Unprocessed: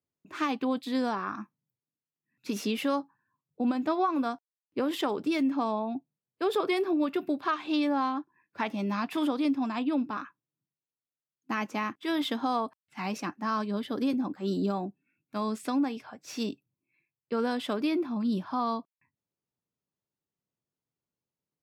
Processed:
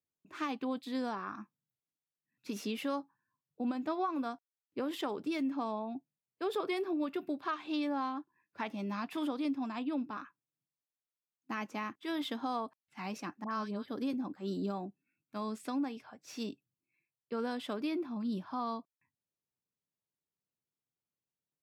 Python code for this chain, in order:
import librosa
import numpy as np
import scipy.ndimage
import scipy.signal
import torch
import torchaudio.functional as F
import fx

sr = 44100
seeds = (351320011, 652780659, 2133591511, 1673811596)

y = fx.dispersion(x, sr, late='highs', ms=69.0, hz=1400.0, at=(13.44, 13.88))
y = F.gain(torch.from_numpy(y), -7.0).numpy()